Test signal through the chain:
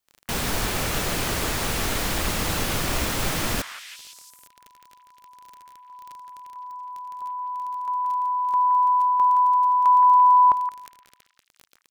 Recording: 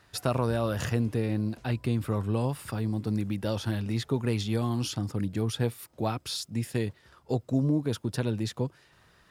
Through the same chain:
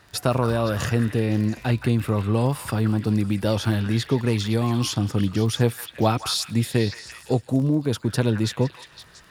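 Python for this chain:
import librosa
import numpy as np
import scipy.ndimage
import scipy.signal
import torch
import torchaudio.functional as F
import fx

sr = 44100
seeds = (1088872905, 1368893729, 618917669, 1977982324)

y = fx.rider(x, sr, range_db=4, speed_s=0.5)
y = fx.dmg_crackle(y, sr, seeds[0], per_s=21.0, level_db=-38.0)
y = fx.echo_stepped(y, sr, ms=171, hz=1500.0, octaves=0.7, feedback_pct=70, wet_db=-5.0)
y = F.gain(torch.from_numpy(y), 7.0).numpy()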